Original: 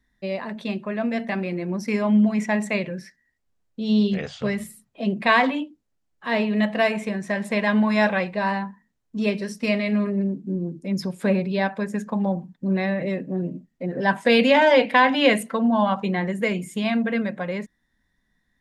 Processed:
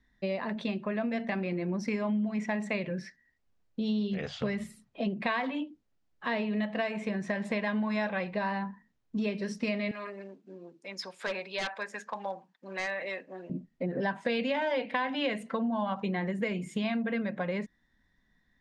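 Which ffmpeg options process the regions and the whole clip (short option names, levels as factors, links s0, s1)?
-filter_complex "[0:a]asettb=1/sr,asplit=3[s0][s1][s2];[s0]atrim=end=9.914[s3];[s1]atrim=start=9.91:end=13.5,asetpts=PTS-STARTPTS,afade=t=in:d=0.004:c=qsin,afade=t=out:st=3.586:d=0.004:c=qsin,highpass=880,aeval=exprs='0.0596*(abs(mod(val(0)/0.0596+3,4)-2)-1)':c=same[s4];[s2]atrim=start=13.496[s5];[s3][s4]acrossfade=d=0.004:c1=hsin:c2=qsin[s6];[s6][s5]acrossfade=d=0.004:c1=qsin:c2=hsin,lowpass=5500,acompressor=threshold=0.0355:ratio=5"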